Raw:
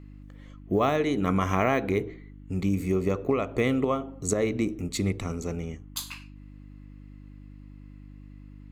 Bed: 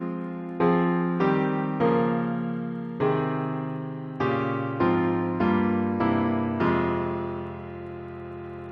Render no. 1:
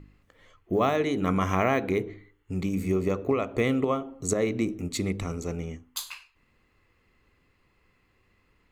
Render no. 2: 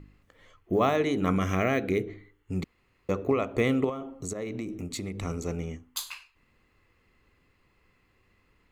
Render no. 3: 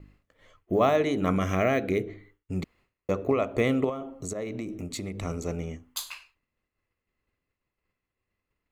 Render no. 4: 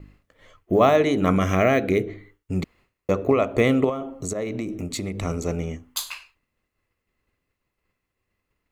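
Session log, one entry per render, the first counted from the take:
de-hum 50 Hz, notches 6
1.36–2.08 bell 940 Hz -13.5 dB 0.49 oct; 2.64–3.09 room tone; 3.89–5.23 compressor 5:1, threshold -31 dBFS
expander -54 dBFS; bell 620 Hz +5.5 dB 0.33 oct
gain +5.5 dB

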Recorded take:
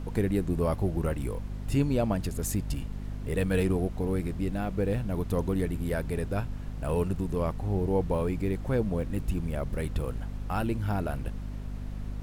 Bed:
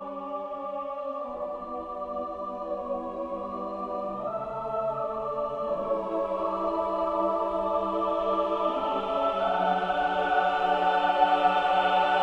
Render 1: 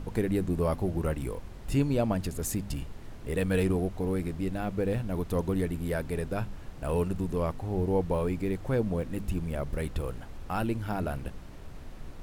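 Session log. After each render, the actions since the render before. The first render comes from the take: de-hum 50 Hz, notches 5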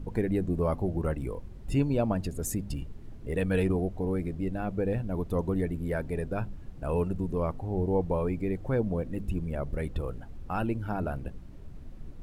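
denoiser 11 dB, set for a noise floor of -44 dBFS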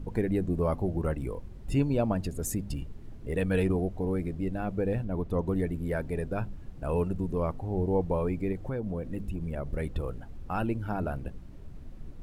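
5.04–5.47 high shelf 4900 Hz -9 dB; 8.52–9.72 compressor, threshold -28 dBFS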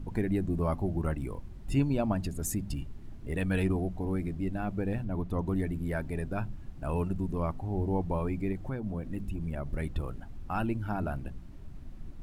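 bell 480 Hz -9 dB 0.43 oct; notches 60/120/180 Hz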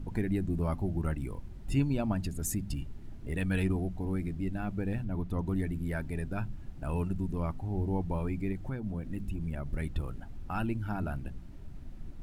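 notch 1100 Hz, Q 16; dynamic EQ 580 Hz, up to -5 dB, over -45 dBFS, Q 0.85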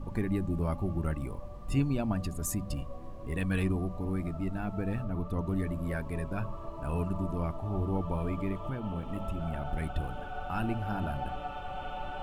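add bed -16.5 dB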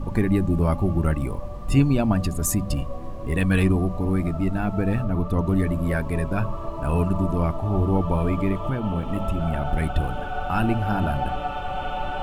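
gain +10 dB

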